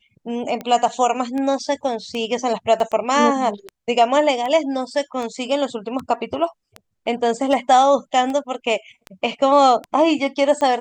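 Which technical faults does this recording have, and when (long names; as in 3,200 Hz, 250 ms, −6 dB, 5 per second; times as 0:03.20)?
scratch tick 78 rpm −16 dBFS
0:02.80: drop-out 2.3 ms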